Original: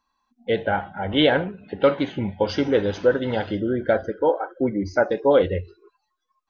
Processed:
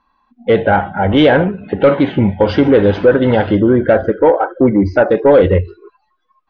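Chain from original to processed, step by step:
in parallel at +3 dB: brickwall limiter −15.5 dBFS, peak gain reduction 9.5 dB
on the sum: soft clipping −7 dBFS, distortion −18 dB
high-frequency loss of the air 330 metres
level +7 dB

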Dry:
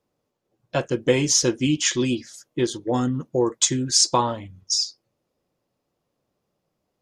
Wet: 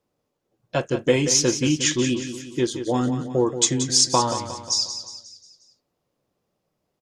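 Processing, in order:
repeating echo 179 ms, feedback 49%, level −10 dB

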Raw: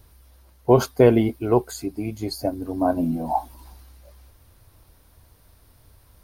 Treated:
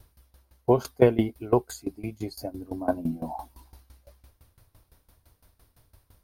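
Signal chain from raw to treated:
tremolo with a ramp in dB decaying 5.9 Hz, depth 19 dB

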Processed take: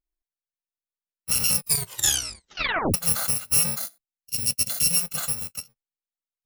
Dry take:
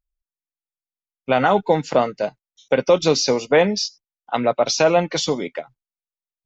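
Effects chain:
samples in bit-reversed order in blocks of 128 samples
0:01.56: tape stop 1.38 s
0:03.79–0:04.97: parametric band 1,100 Hz −13 dB 1.4 octaves
level −6 dB

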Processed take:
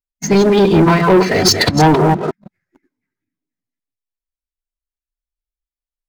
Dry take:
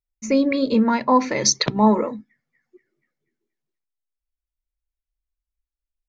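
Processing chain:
delay that plays each chunk backwards 165 ms, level −6 dB
phase-vocoder pitch shift with formants kept −5.5 semitones
leveller curve on the samples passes 3

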